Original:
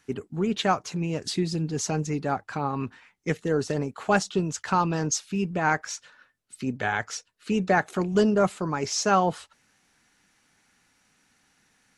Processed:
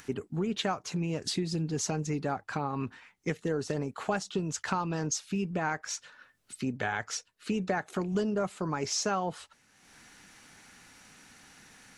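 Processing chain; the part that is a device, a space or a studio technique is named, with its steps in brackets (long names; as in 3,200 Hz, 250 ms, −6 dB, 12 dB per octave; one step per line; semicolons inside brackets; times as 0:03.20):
upward and downward compression (upward compression, threshold −44 dBFS; downward compressor 4 to 1, threshold −28 dBFS, peak gain reduction 11 dB)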